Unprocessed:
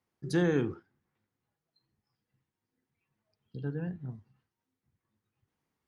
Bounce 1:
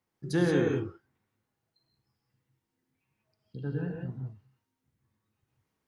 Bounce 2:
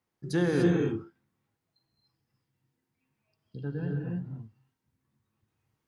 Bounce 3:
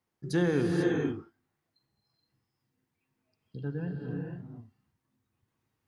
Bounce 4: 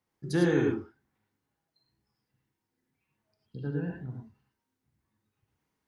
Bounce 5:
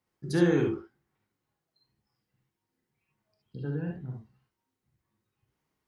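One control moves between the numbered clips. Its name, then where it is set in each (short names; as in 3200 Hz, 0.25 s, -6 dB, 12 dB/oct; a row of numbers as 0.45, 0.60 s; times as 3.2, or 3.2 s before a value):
non-linear reverb, gate: 200, 320, 520, 130, 90 ms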